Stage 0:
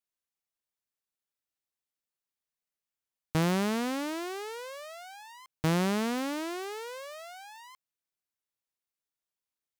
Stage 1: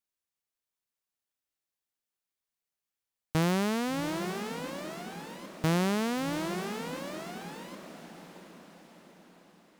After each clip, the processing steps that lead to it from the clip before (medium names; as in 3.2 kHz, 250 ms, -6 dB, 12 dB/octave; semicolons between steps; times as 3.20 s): echo that smears into a reverb 720 ms, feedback 50%, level -9.5 dB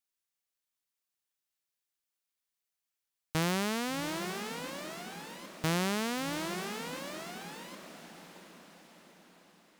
tilt shelf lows -3.5 dB, about 1.1 kHz; trim -1.5 dB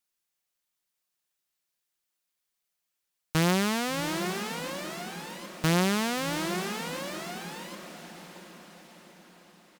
comb 5.6 ms, depth 34%; trim +4.5 dB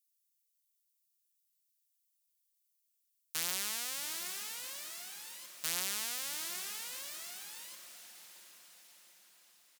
differentiator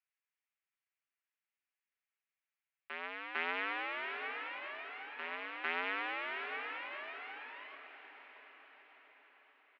mistuned SSB +79 Hz 200–2400 Hz; reverse echo 451 ms -6.5 dB; trim +8.5 dB